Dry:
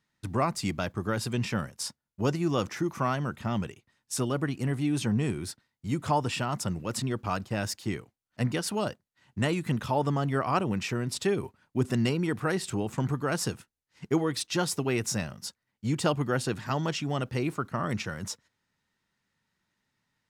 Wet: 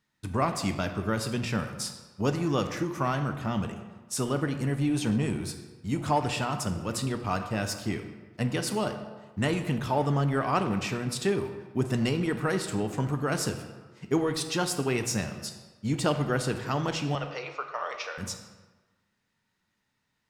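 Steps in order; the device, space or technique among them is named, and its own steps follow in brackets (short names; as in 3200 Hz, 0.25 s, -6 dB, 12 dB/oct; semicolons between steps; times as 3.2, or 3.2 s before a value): 17.15–18.18 Chebyshev band-pass 470–5800 Hz, order 4; saturated reverb return (on a send at -4 dB: reverb RT60 1.3 s, pre-delay 4 ms + soft clip -26.5 dBFS, distortion -12 dB)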